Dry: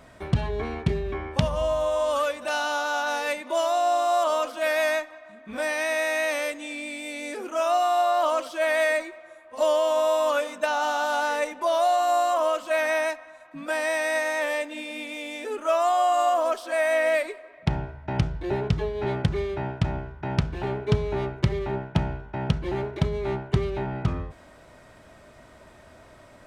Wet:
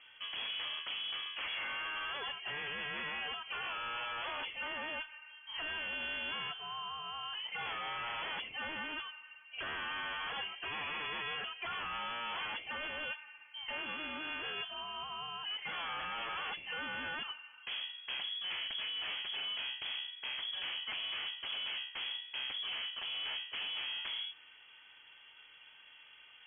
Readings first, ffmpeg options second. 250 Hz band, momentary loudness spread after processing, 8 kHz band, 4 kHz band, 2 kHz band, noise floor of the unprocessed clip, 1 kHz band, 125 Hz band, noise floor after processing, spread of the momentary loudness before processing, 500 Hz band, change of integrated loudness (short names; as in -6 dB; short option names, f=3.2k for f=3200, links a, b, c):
-22.5 dB, 8 LU, under -40 dB, +1.0 dB, -9.0 dB, -51 dBFS, -17.5 dB, -33.0 dB, -59 dBFS, 11 LU, -28.5 dB, -12.5 dB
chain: -af "aeval=exprs='0.0447*(abs(mod(val(0)/0.0447+3,4)-2)-1)':c=same,aemphasis=mode=production:type=50fm,lowpass=f=2.9k:t=q:w=0.5098,lowpass=f=2.9k:t=q:w=0.6013,lowpass=f=2.9k:t=q:w=0.9,lowpass=f=2.9k:t=q:w=2.563,afreqshift=-3400,volume=-7.5dB"